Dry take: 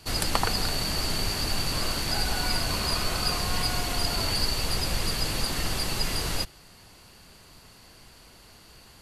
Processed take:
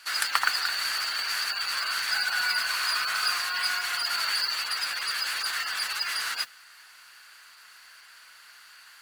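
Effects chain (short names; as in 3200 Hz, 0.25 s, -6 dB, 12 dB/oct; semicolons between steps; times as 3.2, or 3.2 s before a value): spectral gate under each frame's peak -30 dB strong; resonant high-pass 1500 Hz, resonance Q 3.3; modulation noise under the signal 18 dB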